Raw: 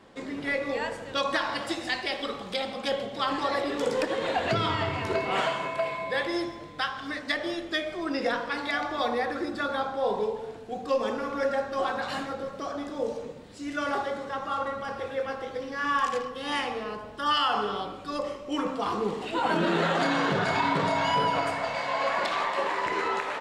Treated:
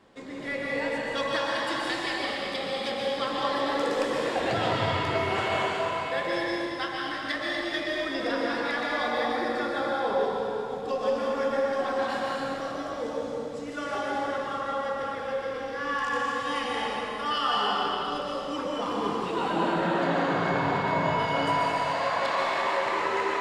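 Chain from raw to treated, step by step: 19.49–21.19 s: treble shelf 2.6 kHz -10.5 dB; plate-style reverb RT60 2.8 s, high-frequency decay 0.95×, pre-delay 110 ms, DRR -4 dB; trim -4.5 dB

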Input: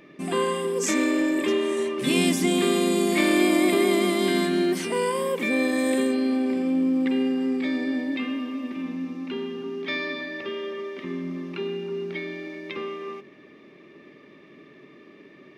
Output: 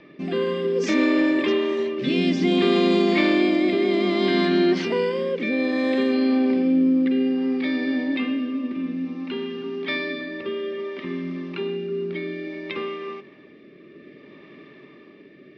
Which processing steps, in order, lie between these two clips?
steep low-pass 5.2 kHz 36 dB/octave; in parallel at -3 dB: peak limiter -16.5 dBFS, peak gain reduction 7 dB; on the sum: rotary cabinet horn 0.6 Hz

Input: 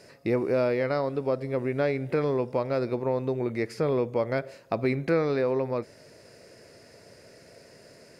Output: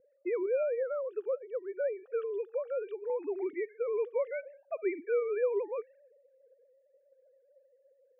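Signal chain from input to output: formants replaced by sine waves; level-controlled noise filter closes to 430 Hz, open at -23.5 dBFS; 0.63–3.10 s: static phaser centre 1.4 kHz, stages 8; trim -6 dB

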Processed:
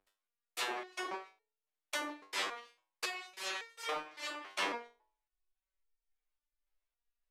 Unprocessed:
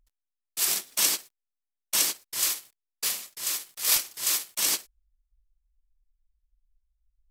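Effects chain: low-pass that closes with the level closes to 1 kHz, closed at -21.5 dBFS; three-band isolator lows -24 dB, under 300 Hz, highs -13 dB, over 3.2 kHz; de-hum 107.6 Hz, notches 10; resonator arpeggio 3.6 Hz 98–460 Hz; trim +16.5 dB

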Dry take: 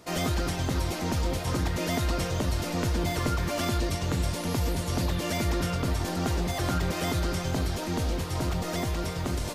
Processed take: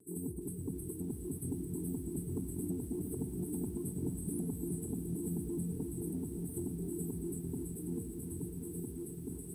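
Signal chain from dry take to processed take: Doppler pass-by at 4.05 s, 5 m/s, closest 3.2 m; frequency weighting D; reverb removal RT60 0.66 s; FFT band-reject 460–7800 Hz; dynamic bell 210 Hz, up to +8 dB, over -53 dBFS, Q 1.1; compression 8:1, threshold -46 dBFS, peak gain reduction 21.5 dB; saturation -37.5 dBFS, distortion -25 dB; echo that smears into a reverb 1022 ms, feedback 50%, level -15 dB; vibrato 0.37 Hz 13 cents; reverberation RT60 2.5 s, pre-delay 7 ms, DRR 10 dB; bit-crushed delay 347 ms, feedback 80%, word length 12-bit, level -11 dB; trim +10.5 dB

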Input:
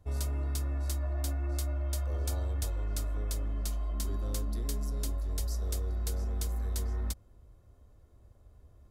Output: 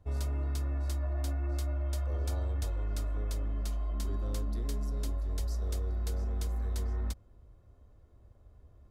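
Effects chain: treble shelf 5.7 kHz -10.5 dB

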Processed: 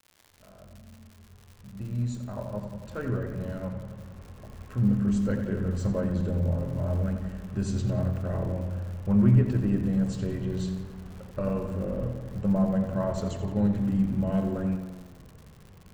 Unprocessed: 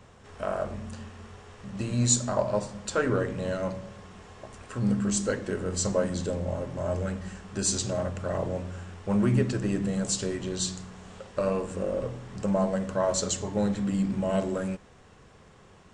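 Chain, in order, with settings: fade-in on the opening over 5.07 s; tone controls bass +13 dB, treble -15 dB; crackle 140 per s -35 dBFS; on a send: tape echo 88 ms, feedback 73%, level -8 dB, low-pass 4.4 kHz; on the sum: trim -6 dB

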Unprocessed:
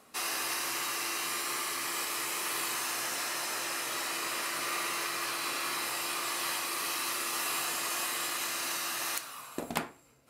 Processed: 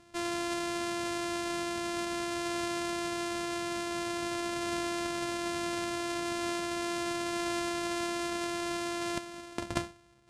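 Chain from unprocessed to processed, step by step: sorted samples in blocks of 128 samples; low-pass 10 kHz 24 dB/octave; bass shelf 150 Hz +5.5 dB

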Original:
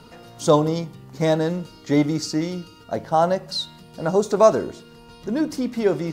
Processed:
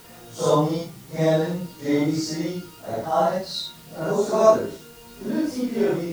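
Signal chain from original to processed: phase randomisation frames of 200 ms; added noise white -49 dBFS; trim -1.5 dB

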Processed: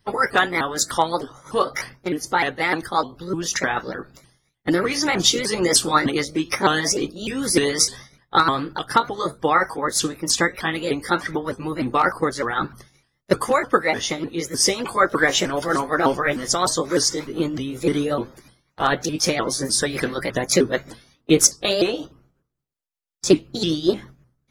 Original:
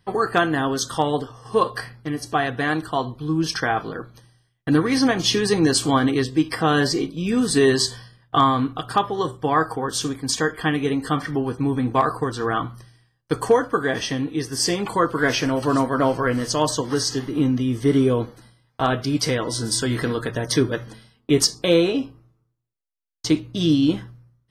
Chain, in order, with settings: sawtooth pitch modulation +3.5 st, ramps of 303 ms; harmonic-percussive split harmonic -12 dB; trim +5.5 dB

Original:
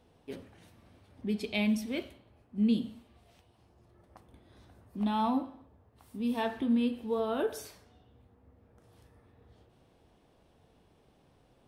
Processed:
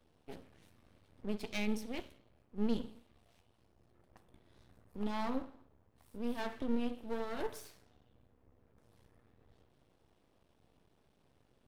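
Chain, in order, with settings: peaking EQ 830 Hz -2.5 dB; half-wave rectifier; trim -2.5 dB

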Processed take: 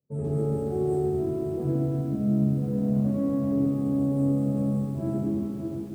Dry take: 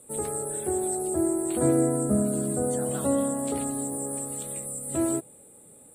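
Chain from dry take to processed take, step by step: local Wiener filter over 25 samples; high-pass 43 Hz 12 dB/octave; tone controls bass +9 dB, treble -15 dB; multi-head delay 193 ms, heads all three, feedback 69%, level -21.5 dB; expander -36 dBFS; reverse; compression 10:1, threshold -32 dBFS, peak gain reduction 18 dB; reverse; peak limiter -29.5 dBFS, peak gain reduction 5.5 dB; peaking EQ 230 Hz +10.5 dB 2.3 oct; reverberation RT60 1.4 s, pre-delay 13 ms, DRR -6.5 dB; bit-crushed delay 136 ms, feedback 80%, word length 7-bit, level -12 dB; trim -8.5 dB

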